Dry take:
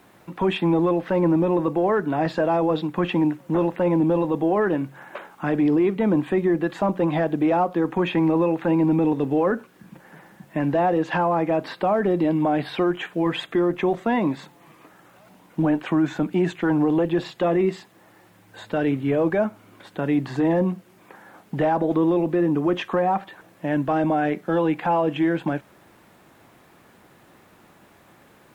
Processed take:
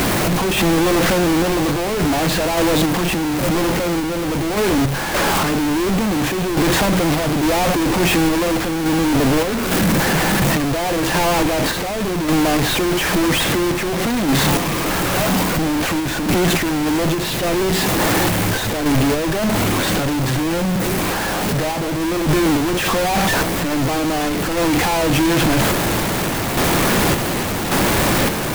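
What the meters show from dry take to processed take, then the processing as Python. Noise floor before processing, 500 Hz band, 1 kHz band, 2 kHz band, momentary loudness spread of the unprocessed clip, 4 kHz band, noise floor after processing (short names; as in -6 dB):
-54 dBFS, +3.0 dB, +6.0 dB, +12.5 dB, 6 LU, +18.0 dB, -21 dBFS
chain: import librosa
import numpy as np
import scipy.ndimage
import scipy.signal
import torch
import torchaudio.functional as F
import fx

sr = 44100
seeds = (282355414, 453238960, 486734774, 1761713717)

p1 = np.sign(x) * np.sqrt(np.mean(np.square(x)))
p2 = fx.low_shelf(p1, sr, hz=210.0, db=3.0)
p3 = fx.dmg_noise_colour(p2, sr, seeds[0], colour='pink', level_db=-34.0)
p4 = fx.sample_hold(p3, sr, seeds[1], rate_hz=1900.0, jitter_pct=0)
p5 = p3 + (p4 * librosa.db_to_amplitude(-10.5))
p6 = fx.tremolo_random(p5, sr, seeds[2], hz=3.5, depth_pct=55)
y = p6 * librosa.db_to_amplitude(5.5)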